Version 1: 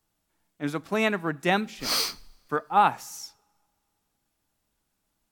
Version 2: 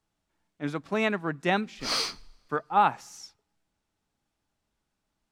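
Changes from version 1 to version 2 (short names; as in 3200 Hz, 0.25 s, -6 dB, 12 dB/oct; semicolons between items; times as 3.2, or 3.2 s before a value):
speech: send off; master: add air absorption 58 m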